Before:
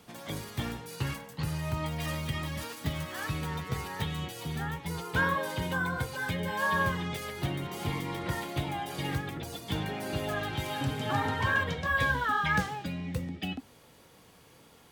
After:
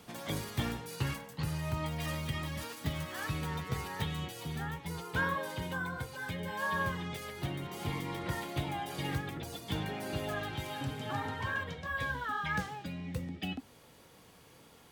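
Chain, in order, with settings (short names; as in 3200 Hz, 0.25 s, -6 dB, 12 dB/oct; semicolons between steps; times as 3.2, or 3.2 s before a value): vocal rider 2 s; gain -5 dB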